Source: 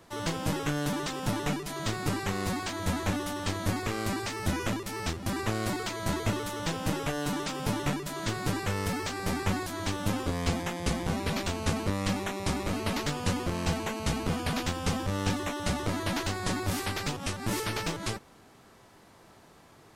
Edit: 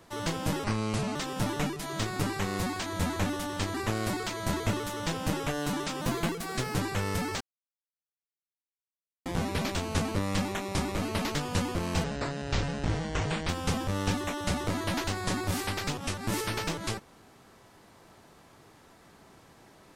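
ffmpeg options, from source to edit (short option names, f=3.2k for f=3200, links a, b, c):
-filter_complex "[0:a]asplit=10[a][b][c][d][e][f][g][h][i][j];[a]atrim=end=0.644[k];[b]atrim=start=0.64:end=1.02,asetpts=PTS-STARTPTS,asetrate=32634,aresample=44100[l];[c]atrim=start=1.016:end=3.612[m];[d]atrim=start=5.338:end=7.614[n];[e]atrim=start=7.61:end=8.46,asetpts=PTS-STARTPTS,asetrate=51156,aresample=44100[o];[f]atrim=start=8.456:end=9.12,asetpts=PTS-STARTPTS,afade=t=out:st=0.66:d=0.004:c=hsin[p];[g]atrim=start=9.12:end=10.97,asetpts=PTS-STARTPTS,volume=0[q];[h]atrim=start=10.97:end=13.754,asetpts=PTS-STARTPTS,afade=t=in:d=0.004:c=hsin[r];[i]atrim=start=13.75:end=14.68,asetpts=PTS-STARTPTS,asetrate=28224,aresample=44100[s];[j]atrim=start=14.676[t];[k][l]acrossfade=d=0.004:c1=hsin:c2=hsin[u];[u][m]acrossfade=d=0.004:c1=hsin:c2=hsin[v];[v][n]acrossfade=d=0.004:c1=hsin:c2=hsin[w];[w][o]acrossfade=d=0.004:c1=hsin:c2=hsin[x];[p][q][r]concat=n=3:v=0:a=1[y];[x][y]acrossfade=d=0.004:c1=hsin:c2=hsin[z];[z][s]acrossfade=d=0.004:c1=hsin:c2=hsin[aa];[aa][t]acrossfade=d=0.004:c1=hsin:c2=hsin"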